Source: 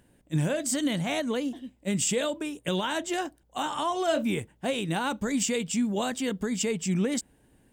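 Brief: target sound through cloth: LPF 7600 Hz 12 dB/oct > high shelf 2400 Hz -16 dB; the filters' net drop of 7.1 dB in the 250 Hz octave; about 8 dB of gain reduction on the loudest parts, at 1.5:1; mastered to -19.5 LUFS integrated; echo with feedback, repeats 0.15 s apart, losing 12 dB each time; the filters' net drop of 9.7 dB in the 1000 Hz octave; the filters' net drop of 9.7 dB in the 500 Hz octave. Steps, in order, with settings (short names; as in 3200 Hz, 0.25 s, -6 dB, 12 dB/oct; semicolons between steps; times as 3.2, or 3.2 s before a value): bell 250 Hz -7 dB; bell 500 Hz -7.5 dB; bell 1000 Hz -6.5 dB; compressor 1.5:1, threshold -48 dBFS; LPF 7600 Hz 12 dB/oct; high shelf 2400 Hz -16 dB; feedback echo 0.15 s, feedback 25%, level -12 dB; gain +24 dB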